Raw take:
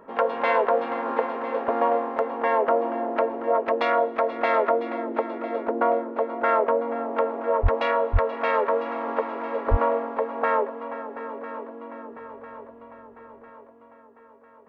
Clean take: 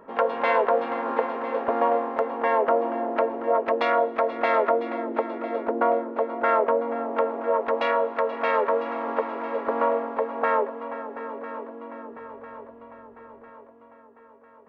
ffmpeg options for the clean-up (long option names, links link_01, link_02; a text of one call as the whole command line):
ffmpeg -i in.wav -filter_complex "[0:a]asplit=3[link_01][link_02][link_03];[link_01]afade=type=out:start_time=7.62:duration=0.02[link_04];[link_02]highpass=frequency=140:width=0.5412,highpass=frequency=140:width=1.3066,afade=type=in:start_time=7.62:duration=0.02,afade=type=out:start_time=7.74:duration=0.02[link_05];[link_03]afade=type=in:start_time=7.74:duration=0.02[link_06];[link_04][link_05][link_06]amix=inputs=3:normalize=0,asplit=3[link_07][link_08][link_09];[link_07]afade=type=out:start_time=8.12:duration=0.02[link_10];[link_08]highpass=frequency=140:width=0.5412,highpass=frequency=140:width=1.3066,afade=type=in:start_time=8.12:duration=0.02,afade=type=out:start_time=8.24:duration=0.02[link_11];[link_09]afade=type=in:start_time=8.24:duration=0.02[link_12];[link_10][link_11][link_12]amix=inputs=3:normalize=0,asplit=3[link_13][link_14][link_15];[link_13]afade=type=out:start_time=9.7:duration=0.02[link_16];[link_14]highpass=frequency=140:width=0.5412,highpass=frequency=140:width=1.3066,afade=type=in:start_time=9.7:duration=0.02,afade=type=out:start_time=9.82:duration=0.02[link_17];[link_15]afade=type=in:start_time=9.82:duration=0.02[link_18];[link_16][link_17][link_18]amix=inputs=3:normalize=0" out.wav